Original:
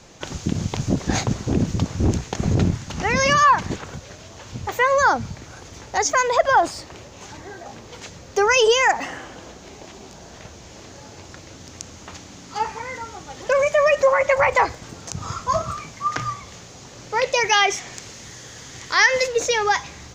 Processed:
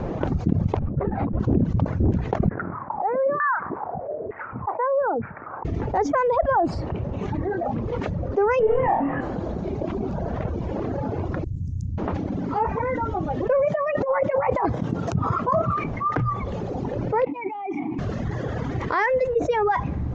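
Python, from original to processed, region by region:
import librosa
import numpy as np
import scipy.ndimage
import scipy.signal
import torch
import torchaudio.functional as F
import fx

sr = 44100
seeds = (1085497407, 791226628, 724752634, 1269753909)

y = fx.chain(x, sr, fx.over_compress(threshold_db=-26.0, ratio=-0.5),
    fx.air_absorb(metres=380.0),
    fx.ensemble(), at=(0.79, 1.4))
y = fx.chain(y, sr, fx.steep_lowpass(hz=2300.0, slope=48),
    fx.dynamic_eq(hz=1500.0, q=2.5, threshold_db=-32.0, ratio=4.0, max_db=7),
    fx.filter_lfo_bandpass(shape='saw_down', hz=1.1, low_hz=440.0, high_hz=1800.0, q=4.3), at=(2.49, 5.65))
y = fx.chain(y, sr, fx.cvsd(bps=16000),
    fx.doubler(ms=14.0, db=-11.0),
    fx.room_flutter(wall_m=4.3, rt60_s=0.45), at=(8.59, 9.21))
y = fx.chain(y, sr, fx.cheby1_bandstop(low_hz=120.0, high_hz=9000.0, order=2),
    fx.high_shelf(hz=9700.0, db=4.0), at=(11.44, 11.98))
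y = fx.chain(y, sr, fx.highpass(hz=120.0, slope=12),
    fx.high_shelf(hz=8300.0, db=4.5),
    fx.over_compress(threshold_db=-20.0, ratio=-0.5), at=(13.65, 15.84))
y = fx.chain(y, sr, fx.over_compress(threshold_db=-29.0, ratio=-1.0),
    fx.vowel_filter(vowel='u'), at=(17.25, 17.99))
y = scipy.signal.sosfilt(scipy.signal.bessel(2, 620.0, 'lowpass', norm='mag', fs=sr, output='sos'), y)
y = fx.dereverb_blind(y, sr, rt60_s=1.9)
y = fx.env_flatten(y, sr, amount_pct=70)
y = y * 10.0 ** (-4.0 / 20.0)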